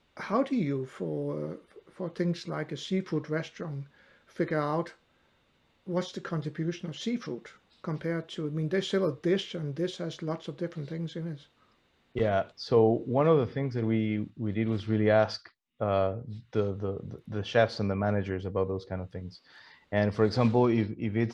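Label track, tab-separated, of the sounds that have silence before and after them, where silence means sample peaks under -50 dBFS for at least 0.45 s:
5.870000	11.440000	sound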